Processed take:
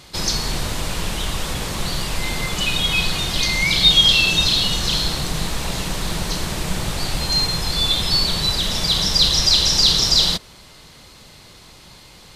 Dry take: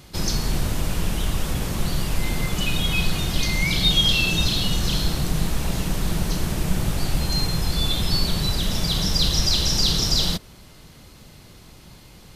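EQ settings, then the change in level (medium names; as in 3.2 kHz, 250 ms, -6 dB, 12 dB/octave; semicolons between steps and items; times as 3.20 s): ten-band graphic EQ 500 Hz +4 dB, 1 kHz +6 dB, 2 kHz +5 dB, 4 kHz +8 dB, 8 kHz +6 dB; -2.5 dB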